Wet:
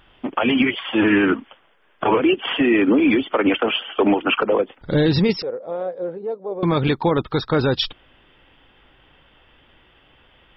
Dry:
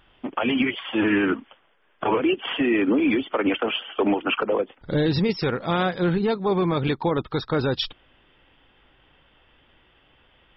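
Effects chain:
0:05.42–0:06.63: resonant band-pass 530 Hz, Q 5.1
level +4.5 dB

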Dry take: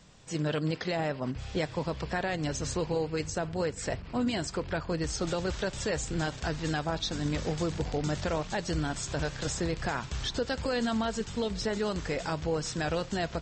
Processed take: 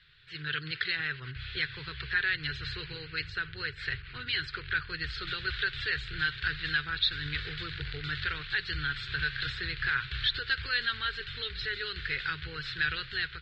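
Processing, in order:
0:11.58–0:12.10: dynamic equaliser 940 Hz, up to −5 dB, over −48 dBFS, Q 1.3
automatic gain control gain up to 4.5 dB
drawn EQ curve 140 Hz 0 dB, 210 Hz −27 dB, 410 Hz −6 dB, 620 Hz −29 dB, 990 Hz −14 dB, 1,500 Hz +13 dB, 2,400 Hz +9 dB, 4,200 Hz +11 dB, 6,200 Hz −26 dB
level −7.5 dB

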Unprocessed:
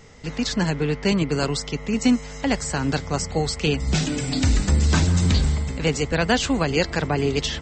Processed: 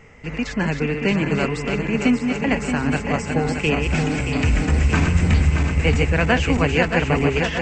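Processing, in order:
feedback delay that plays each chunk backwards 313 ms, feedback 78%, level −5.5 dB
high shelf with overshoot 3,100 Hz −7 dB, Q 3

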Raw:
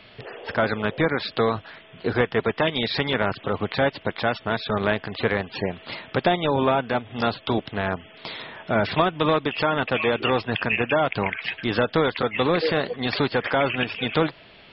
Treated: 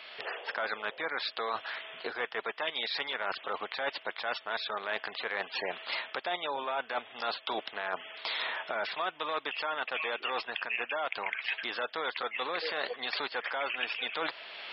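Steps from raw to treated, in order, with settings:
camcorder AGC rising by 13 dB per second
high-pass filter 750 Hz 12 dB per octave
reversed playback
downward compressor 6 to 1, threshold −33 dBFS, peak gain reduction 14.5 dB
reversed playback
level +2 dB

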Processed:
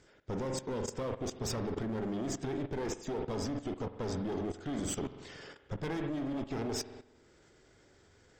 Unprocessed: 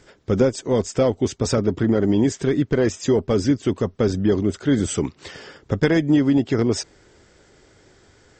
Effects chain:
asymmetric clip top −26.5 dBFS
spring reverb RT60 1.1 s, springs 45 ms, chirp 35 ms, DRR 6 dB
output level in coarse steps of 14 dB
level −7 dB

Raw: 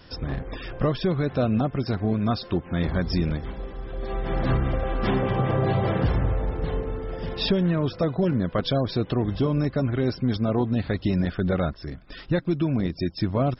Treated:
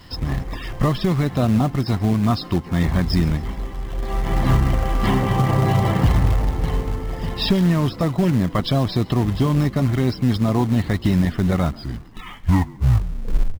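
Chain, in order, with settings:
turntable brake at the end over 1.92 s
comb filter 1 ms, depth 47%
in parallel at −5.5 dB: log-companded quantiser 4 bits
on the sum: echo with shifted repeats 137 ms, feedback 52%, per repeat +56 Hz, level −23 dB

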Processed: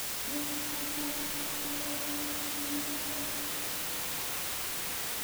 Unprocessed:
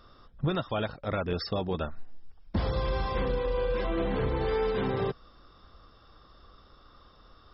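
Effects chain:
gliding playback speed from 160% → 128%
high-pass filter 140 Hz 24 dB per octave
treble cut that deepens with the level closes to 610 Hz, closed at −25.5 dBFS
low-pass filter 1,300 Hz 24 dB per octave
low-shelf EQ 370 Hz +5.5 dB
stiff-string resonator 290 Hz, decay 0.34 s, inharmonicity 0.008
rotating-speaker cabinet horn 6.3 Hz
bit-depth reduction 6 bits, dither triangular
spring reverb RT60 3.9 s, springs 34/52 ms, chirp 35 ms, DRR 1 dB

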